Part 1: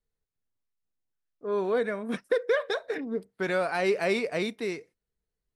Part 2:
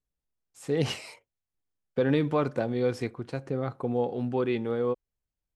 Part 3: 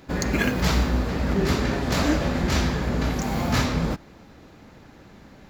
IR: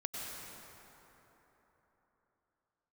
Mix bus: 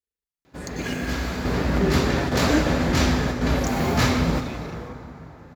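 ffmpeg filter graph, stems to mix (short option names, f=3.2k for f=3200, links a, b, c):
-filter_complex "[0:a]tremolo=f=26:d=0.974,asplit=2[a][b];[b]afreqshift=-0.79[c];[a][c]amix=inputs=2:normalize=1,volume=-2.5dB,asplit=2[d][e];[1:a]tiltshelf=f=970:g=-8,volume=-11.5dB[f];[2:a]adelay=450,volume=-0.5dB,asplit=2[g][h];[h]volume=-5.5dB[i];[e]apad=whole_len=262138[j];[g][j]sidechaingate=range=-33dB:threshold=-57dB:ratio=16:detection=peak[k];[3:a]atrim=start_sample=2205[l];[i][l]afir=irnorm=-1:irlink=0[m];[d][f][k][m]amix=inputs=4:normalize=0,highpass=49,equalizer=f=200:w=4.3:g=-3"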